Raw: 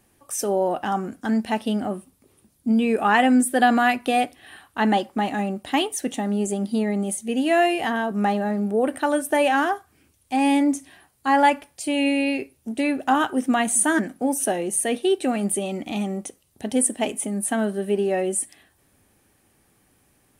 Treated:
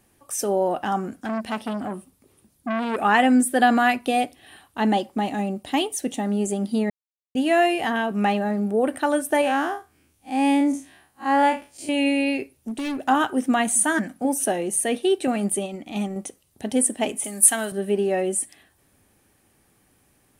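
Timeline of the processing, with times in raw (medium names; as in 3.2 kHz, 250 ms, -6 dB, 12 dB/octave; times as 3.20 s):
1.12–3.03 s: transformer saturation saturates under 1.1 kHz
3.99–6.20 s: peaking EQ 1.5 kHz -5.5 dB 1.2 oct
6.90–7.35 s: mute
7.95–8.39 s: peaking EQ 2.6 kHz +8.5 dB 0.61 oct
9.41–11.89 s: spectral blur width 91 ms
12.56–13.08 s: hard clipper -25 dBFS
13.70–14.25 s: peaking EQ 400 Hz -11 dB 0.45 oct
15.27–16.16 s: gate -28 dBFS, range -6 dB
17.24–17.72 s: tilt EQ +4 dB/octave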